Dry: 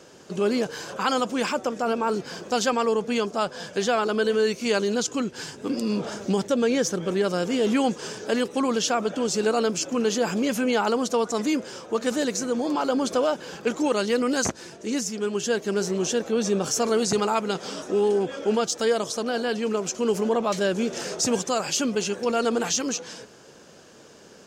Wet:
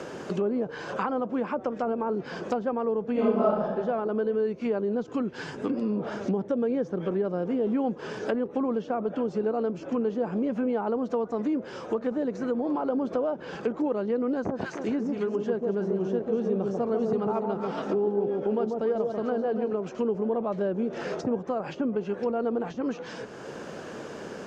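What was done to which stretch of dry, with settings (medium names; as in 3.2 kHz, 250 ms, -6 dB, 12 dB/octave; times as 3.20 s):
3.12–3.63 s: reverb throw, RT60 1.1 s, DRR -12 dB
14.33–19.73 s: echo whose repeats swap between lows and highs 141 ms, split 1 kHz, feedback 56%, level -3 dB
whole clip: low-pass that closes with the level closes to 820 Hz, closed at -21 dBFS; three bands compressed up and down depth 70%; trim -3.5 dB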